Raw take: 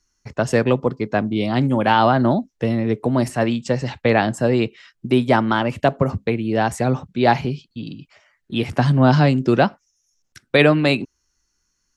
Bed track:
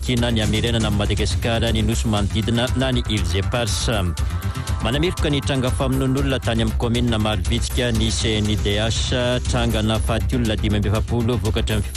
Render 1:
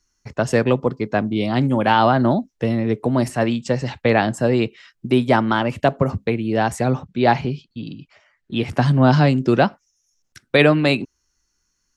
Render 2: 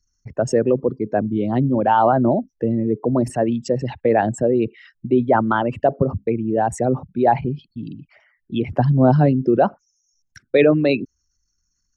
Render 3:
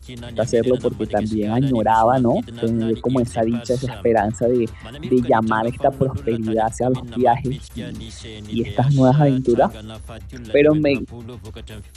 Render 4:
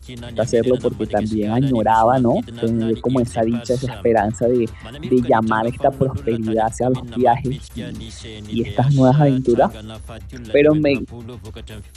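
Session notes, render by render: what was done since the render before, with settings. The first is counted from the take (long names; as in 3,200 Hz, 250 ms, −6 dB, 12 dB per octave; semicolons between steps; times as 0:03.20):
0:06.96–0:08.68: high-frequency loss of the air 53 metres
spectral envelope exaggerated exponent 2
mix in bed track −15 dB
level +1 dB; brickwall limiter −3 dBFS, peak gain reduction 1 dB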